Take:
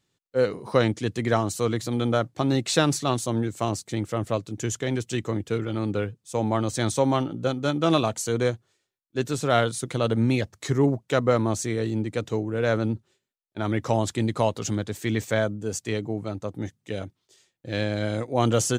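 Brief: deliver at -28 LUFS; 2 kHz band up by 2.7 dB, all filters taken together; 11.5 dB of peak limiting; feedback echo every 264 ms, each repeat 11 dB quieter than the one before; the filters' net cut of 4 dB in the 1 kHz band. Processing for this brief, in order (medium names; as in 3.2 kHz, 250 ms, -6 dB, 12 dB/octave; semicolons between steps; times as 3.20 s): peaking EQ 1 kHz -8 dB; peaking EQ 2 kHz +6.5 dB; peak limiter -16.5 dBFS; feedback delay 264 ms, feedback 28%, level -11 dB; trim +0.5 dB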